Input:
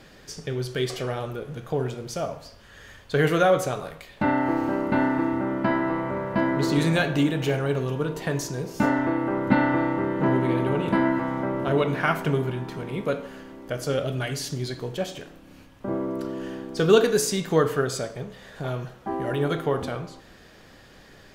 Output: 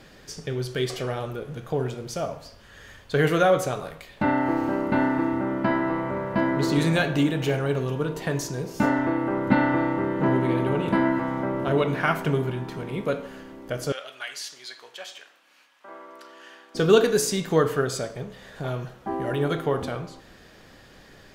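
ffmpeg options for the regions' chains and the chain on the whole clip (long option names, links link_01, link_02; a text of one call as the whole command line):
ffmpeg -i in.wav -filter_complex "[0:a]asettb=1/sr,asplit=3[link_01][link_02][link_03];[link_01]atrim=end=13.924[link_04];[link_02]atrim=start=13.92:end=16.75,asetpts=PTS-STARTPTS,afade=type=in:duration=0.004:curve=qsin,afade=type=out:start_time=2.826:duration=0.004:curve=qsin,highpass=1200,highshelf=frequency=9200:gain=-9.5[link_05];[link_03]atrim=start=16.746[link_06];[link_04][link_05]acrossfade=duration=0.004:curve1=hsin:curve2=qsin[link_07];[link_07][link_06]acrossfade=duration=0.004:curve1=qsin:curve2=hsin" out.wav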